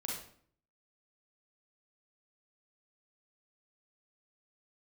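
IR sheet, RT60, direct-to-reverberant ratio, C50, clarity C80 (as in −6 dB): 0.55 s, −3.0 dB, 1.0 dB, 6.5 dB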